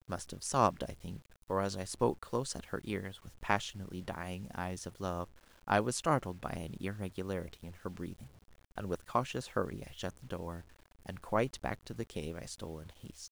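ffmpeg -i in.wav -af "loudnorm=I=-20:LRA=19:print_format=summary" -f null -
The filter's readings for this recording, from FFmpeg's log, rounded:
Input Integrated:    -37.7 LUFS
Input True Peak:     -12.4 dBTP
Input LRA:             3.8 LU
Input Threshold:     -48.3 LUFS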